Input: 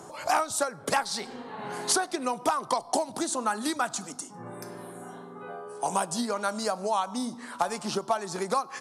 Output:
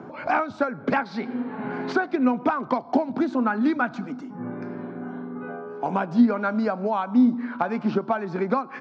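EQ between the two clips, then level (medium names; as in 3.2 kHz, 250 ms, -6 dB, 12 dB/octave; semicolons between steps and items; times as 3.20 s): distance through air 68 m; cabinet simulation 170–5000 Hz, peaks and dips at 250 Hz +9 dB, 1.5 kHz +9 dB, 2.3 kHz +10 dB; tilt EQ -4 dB/octave; 0.0 dB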